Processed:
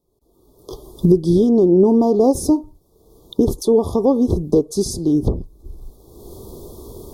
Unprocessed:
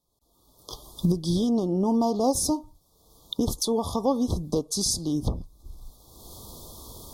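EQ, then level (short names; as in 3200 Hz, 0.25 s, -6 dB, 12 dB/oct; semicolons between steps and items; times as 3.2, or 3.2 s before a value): tilt shelf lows +7.5 dB, about 1100 Hz; bell 390 Hz +12 dB 0.57 oct; high shelf 6500 Hz +8.5 dB; 0.0 dB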